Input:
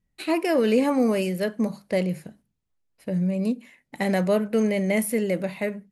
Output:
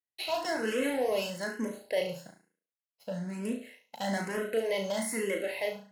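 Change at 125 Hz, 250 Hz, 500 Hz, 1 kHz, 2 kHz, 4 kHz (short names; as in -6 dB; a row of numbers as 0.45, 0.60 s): -13.5, -12.5, -7.0, -5.0, -4.0, -0.5 dB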